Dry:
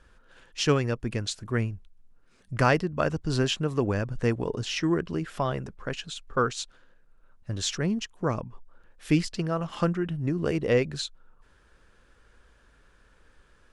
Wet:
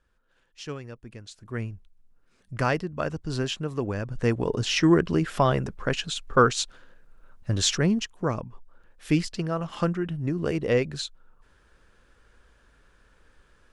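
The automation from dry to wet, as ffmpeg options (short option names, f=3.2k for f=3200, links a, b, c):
-af "volume=6.5dB,afade=t=in:st=1.3:d=0.4:silence=0.316228,afade=t=in:st=3.97:d=0.91:silence=0.334965,afade=t=out:st=7.59:d=0.73:silence=0.473151"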